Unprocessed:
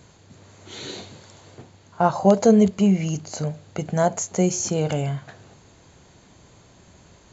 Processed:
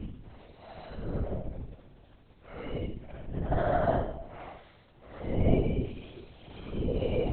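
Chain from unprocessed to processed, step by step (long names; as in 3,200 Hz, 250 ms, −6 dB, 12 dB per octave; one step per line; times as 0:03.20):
extreme stretch with random phases 4.4×, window 0.10 s, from 0:03.17
linear-prediction vocoder at 8 kHz whisper
level −8 dB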